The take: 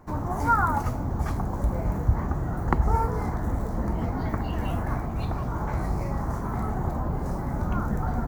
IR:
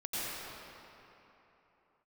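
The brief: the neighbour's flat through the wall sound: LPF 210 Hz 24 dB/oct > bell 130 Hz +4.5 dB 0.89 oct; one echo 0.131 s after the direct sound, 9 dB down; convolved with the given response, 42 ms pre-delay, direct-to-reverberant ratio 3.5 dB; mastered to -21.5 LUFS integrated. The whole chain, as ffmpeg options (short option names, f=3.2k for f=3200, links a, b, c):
-filter_complex "[0:a]aecho=1:1:131:0.355,asplit=2[a][b];[1:a]atrim=start_sample=2205,adelay=42[c];[b][c]afir=irnorm=-1:irlink=0,volume=-9.5dB[d];[a][d]amix=inputs=2:normalize=0,lowpass=f=210:w=0.5412,lowpass=f=210:w=1.3066,equalizer=f=130:t=o:w=0.89:g=4.5,volume=5.5dB"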